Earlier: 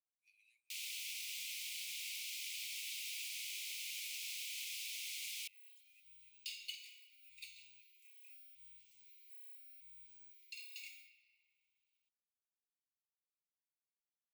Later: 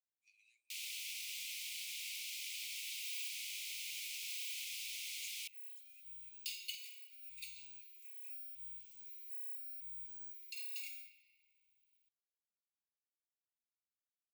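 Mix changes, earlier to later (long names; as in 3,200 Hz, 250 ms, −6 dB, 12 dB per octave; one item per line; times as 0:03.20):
speech: add low-pass with resonance 7,100 Hz, resonance Q 2.4
second sound: add high-shelf EQ 8,200 Hz +10.5 dB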